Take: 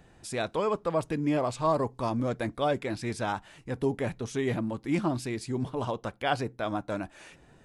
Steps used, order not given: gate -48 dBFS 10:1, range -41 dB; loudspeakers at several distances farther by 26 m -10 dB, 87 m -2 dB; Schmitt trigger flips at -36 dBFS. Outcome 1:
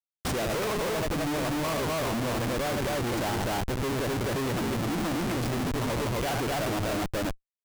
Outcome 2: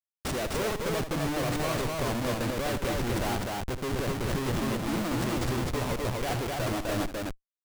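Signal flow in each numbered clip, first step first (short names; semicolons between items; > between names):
loudspeakers at several distances > gate > Schmitt trigger; gate > Schmitt trigger > loudspeakers at several distances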